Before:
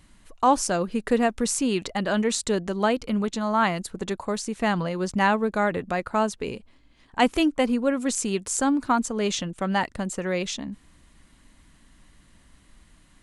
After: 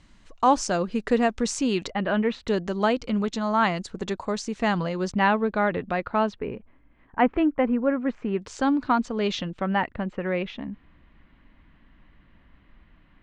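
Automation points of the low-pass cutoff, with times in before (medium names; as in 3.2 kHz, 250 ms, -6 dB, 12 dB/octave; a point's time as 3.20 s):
low-pass 24 dB/octave
6.9 kHz
from 1.91 s 3 kHz
from 2.48 s 6.7 kHz
from 5.12 s 4 kHz
from 6.39 s 2.1 kHz
from 8.42 s 4.6 kHz
from 9.62 s 2.8 kHz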